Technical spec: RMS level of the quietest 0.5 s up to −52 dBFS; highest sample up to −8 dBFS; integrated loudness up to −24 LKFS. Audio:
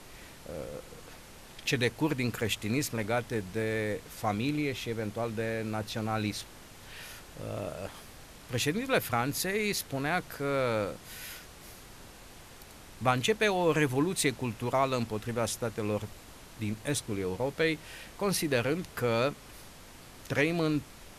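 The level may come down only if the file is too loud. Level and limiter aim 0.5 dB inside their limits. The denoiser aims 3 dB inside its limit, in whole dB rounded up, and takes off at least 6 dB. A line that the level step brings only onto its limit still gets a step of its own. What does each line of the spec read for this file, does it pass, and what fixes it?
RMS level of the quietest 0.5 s −50 dBFS: out of spec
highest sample −12.5 dBFS: in spec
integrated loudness −31.5 LKFS: in spec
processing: broadband denoise 6 dB, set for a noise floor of −50 dBFS

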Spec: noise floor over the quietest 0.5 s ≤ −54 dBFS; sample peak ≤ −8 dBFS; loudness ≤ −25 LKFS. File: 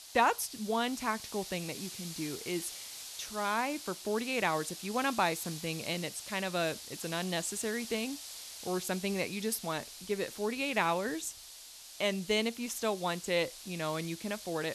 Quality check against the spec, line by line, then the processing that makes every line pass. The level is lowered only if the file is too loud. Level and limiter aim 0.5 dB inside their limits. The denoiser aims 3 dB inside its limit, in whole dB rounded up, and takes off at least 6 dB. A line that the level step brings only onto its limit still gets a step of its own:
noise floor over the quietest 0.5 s −51 dBFS: out of spec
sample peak −13.5 dBFS: in spec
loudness −34.0 LKFS: in spec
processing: broadband denoise 6 dB, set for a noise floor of −51 dBFS

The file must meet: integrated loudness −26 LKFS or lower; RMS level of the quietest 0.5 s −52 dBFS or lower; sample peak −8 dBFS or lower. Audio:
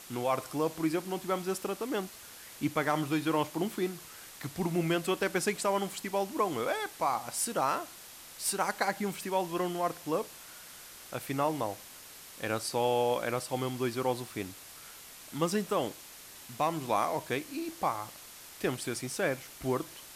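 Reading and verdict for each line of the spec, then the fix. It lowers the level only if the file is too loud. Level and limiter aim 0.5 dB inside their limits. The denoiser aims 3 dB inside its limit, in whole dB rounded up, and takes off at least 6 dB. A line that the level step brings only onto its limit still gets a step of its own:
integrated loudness −32.5 LKFS: in spec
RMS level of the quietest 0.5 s −50 dBFS: out of spec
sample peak −15.0 dBFS: in spec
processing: broadband denoise 6 dB, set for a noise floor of −50 dBFS

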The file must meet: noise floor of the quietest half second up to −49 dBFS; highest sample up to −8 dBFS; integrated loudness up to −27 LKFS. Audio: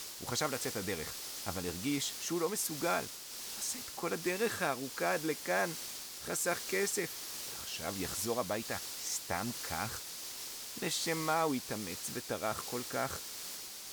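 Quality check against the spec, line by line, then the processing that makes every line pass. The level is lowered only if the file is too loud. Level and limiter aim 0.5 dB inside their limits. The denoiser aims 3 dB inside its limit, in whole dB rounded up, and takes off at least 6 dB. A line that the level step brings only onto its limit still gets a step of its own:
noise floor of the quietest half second −45 dBFS: out of spec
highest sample −19.5 dBFS: in spec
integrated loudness −36.0 LKFS: in spec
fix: broadband denoise 7 dB, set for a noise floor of −45 dBFS

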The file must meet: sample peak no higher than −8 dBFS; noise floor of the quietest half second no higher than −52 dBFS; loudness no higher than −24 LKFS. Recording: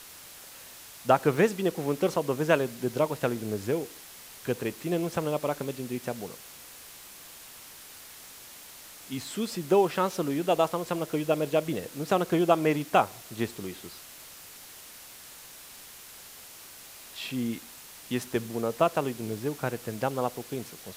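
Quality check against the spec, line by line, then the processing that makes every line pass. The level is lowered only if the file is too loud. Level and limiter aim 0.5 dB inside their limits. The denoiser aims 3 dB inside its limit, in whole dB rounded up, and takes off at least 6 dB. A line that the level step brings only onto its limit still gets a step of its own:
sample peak −6.5 dBFS: out of spec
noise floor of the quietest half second −48 dBFS: out of spec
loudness −29.0 LKFS: in spec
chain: broadband denoise 7 dB, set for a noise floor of −48 dBFS
brickwall limiter −8.5 dBFS

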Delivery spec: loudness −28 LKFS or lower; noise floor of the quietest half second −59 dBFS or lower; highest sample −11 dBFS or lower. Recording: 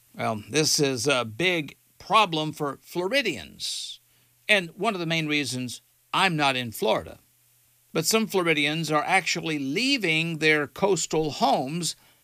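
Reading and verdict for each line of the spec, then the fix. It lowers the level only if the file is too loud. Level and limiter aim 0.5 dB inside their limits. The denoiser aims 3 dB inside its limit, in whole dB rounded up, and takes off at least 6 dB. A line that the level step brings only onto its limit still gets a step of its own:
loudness −24.5 LKFS: out of spec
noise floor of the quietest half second −62 dBFS: in spec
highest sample −7.0 dBFS: out of spec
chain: level −4 dB
brickwall limiter −11.5 dBFS

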